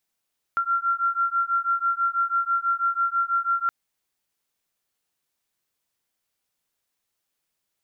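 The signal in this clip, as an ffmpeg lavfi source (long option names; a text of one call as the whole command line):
ffmpeg -f lavfi -i "aevalsrc='0.0631*(sin(2*PI*1370*t)+sin(2*PI*1376.1*t))':duration=3.12:sample_rate=44100" out.wav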